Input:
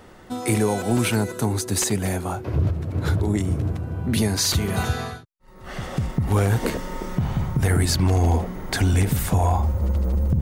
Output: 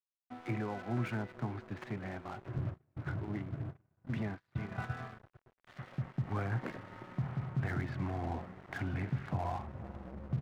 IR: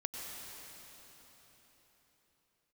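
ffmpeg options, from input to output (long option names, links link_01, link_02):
-filter_complex "[0:a]aeval=exprs='sgn(val(0))*max(abs(val(0))-0.00596,0)':channel_layout=same,highpass=frequency=100:width=0.5412,highpass=frequency=100:width=1.3066,equalizer=frequency=130:width_type=q:width=4:gain=10,equalizer=frequency=460:width_type=q:width=4:gain=-10,equalizer=frequency=920:width_type=q:width=4:gain=-4,lowpass=frequency=2100:width=0.5412,lowpass=frequency=2100:width=1.3066,asplit=2[link_01][link_02];[link_02]adelay=454,lowpass=frequency=1000:poles=1,volume=-17dB,asplit=2[link_03][link_04];[link_04]adelay=454,lowpass=frequency=1000:poles=1,volume=0.43,asplit=2[link_05][link_06];[link_06]adelay=454,lowpass=frequency=1000:poles=1,volume=0.43,asplit=2[link_07][link_08];[link_08]adelay=454,lowpass=frequency=1000:poles=1,volume=0.43[link_09];[link_01][link_03][link_05][link_07][link_09]amix=inputs=5:normalize=0,aeval=exprs='sgn(val(0))*max(abs(val(0))-0.0119,0)':channel_layout=same,equalizer=frequency=140:width=0.46:gain=-7,asettb=1/sr,asplit=3[link_10][link_11][link_12];[link_10]atrim=end=2.584[link_13];[link_11]atrim=start=2.58:end=4.9,asetpts=PTS-STARTPTS,afade=type=in:duration=0.004:curve=qsin,afade=type=out:start_time=2.316:duration=0.004:curve=qsin,agate=range=-29dB:threshold=-30dB:ratio=16:detection=peak[link_14];[link_12]atrim=start=4.896[link_15];[link_13][link_14]acrossfade=duration=0.004:curve1=hsin:curve2=qsin[link_16];[link_16][link_15]acrossfade=duration=0.004:curve1=qsin:curve2=hsin,volume=-9dB"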